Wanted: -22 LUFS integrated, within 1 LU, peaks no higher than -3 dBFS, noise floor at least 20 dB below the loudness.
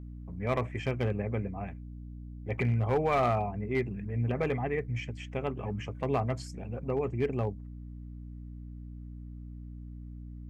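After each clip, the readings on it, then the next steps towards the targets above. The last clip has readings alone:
clipped samples 0.4%; clipping level -20.5 dBFS; hum 60 Hz; highest harmonic 300 Hz; hum level -42 dBFS; loudness -32.0 LUFS; peak level -20.5 dBFS; loudness target -22.0 LUFS
-> clip repair -20.5 dBFS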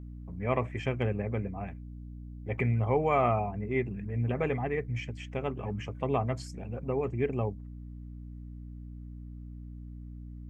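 clipped samples 0.0%; hum 60 Hz; highest harmonic 300 Hz; hum level -42 dBFS
-> hum notches 60/120/180/240/300 Hz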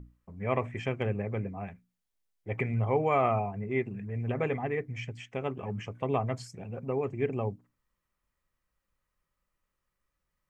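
hum not found; loudness -32.5 LUFS; peak level -14.0 dBFS; loudness target -22.0 LUFS
-> trim +10.5 dB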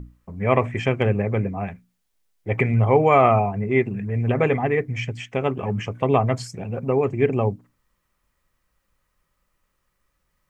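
loudness -22.0 LUFS; peak level -3.5 dBFS; noise floor -73 dBFS

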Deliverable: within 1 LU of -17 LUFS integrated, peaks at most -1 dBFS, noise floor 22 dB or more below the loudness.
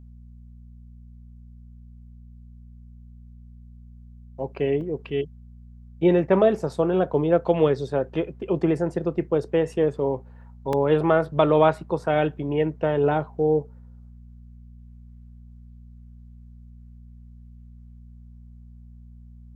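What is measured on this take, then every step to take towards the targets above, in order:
dropouts 2; longest dropout 1.8 ms; hum 60 Hz; highest harmonic 240 Hz; hum level -43 dBFS; loudness -23.0 LUFS; peak level -5.0 dBFS; loudness target -17.0 LUFS
-> interpolate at 4.81/10.73 s, 1.8 ms; de-hum 60 Hz, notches 4; trim +6 dB; peak limiter -1 dBFS

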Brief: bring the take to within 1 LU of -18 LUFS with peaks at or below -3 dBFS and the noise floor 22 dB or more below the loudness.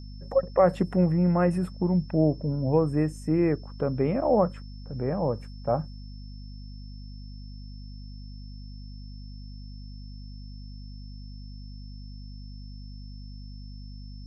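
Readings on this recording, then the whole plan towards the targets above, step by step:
hum 50 Hz; highest harmonic 250 Hz; hum level -39 dBFS; steady tone 5.3 kHz; tone level -54 dBFS; loudness -25.5 LUFS; peak level -8.0 dBFS; loudness target -18.0 LUFS
-> de-hum 50 Hz, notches 5; band-stop 5.3 kHz, Q 30; trim +7.5 dB; peak limiter -3 dBFS

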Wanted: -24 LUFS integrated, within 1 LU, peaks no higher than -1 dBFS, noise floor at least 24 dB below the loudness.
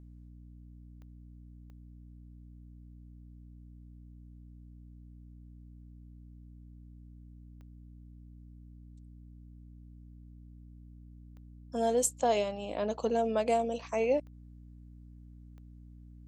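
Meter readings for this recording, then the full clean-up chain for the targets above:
clicks found 6; hum 60 Hz; highest harmonic 300 Hz; hum level -49 dBFS; loudness -30.5 LUFS; peak level -15.0 dBFS; loudness target -24.0 LUFS
-> de-click; de-hum 60 Hz, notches 5; trim +6.5 dB

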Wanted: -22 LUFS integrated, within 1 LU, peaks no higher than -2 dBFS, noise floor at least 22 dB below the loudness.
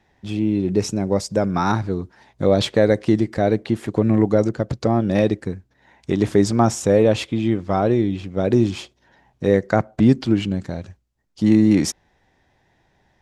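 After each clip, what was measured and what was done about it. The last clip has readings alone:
loudness -19.5 LUFS; peak level -2.0 dBFS; loudness target -22.0 LUFS
-> trim -2.5 dB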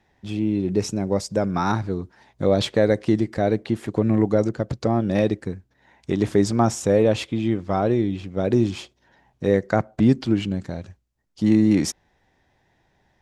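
loudness -22.0 LUFS; peak level -4.5 dBFS; noise floor -66 dBFS

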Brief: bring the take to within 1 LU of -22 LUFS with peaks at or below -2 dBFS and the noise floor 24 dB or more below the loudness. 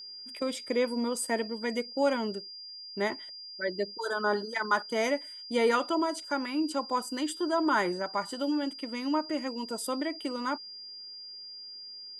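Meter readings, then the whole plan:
steady tone 4.8 kHz; tone level -42 dBFS; loudness -31.0 LUFS; peak level -14.5 dBFS; loudness target -22.0 LUFS
-> band-stop 4.8 kHz, Q 30; trim +9 dB

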